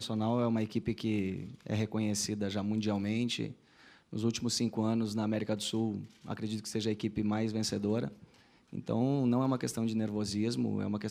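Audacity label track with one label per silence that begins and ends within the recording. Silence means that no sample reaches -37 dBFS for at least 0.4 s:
3.510000	4.130000	silence
8.080000	8.730000	silence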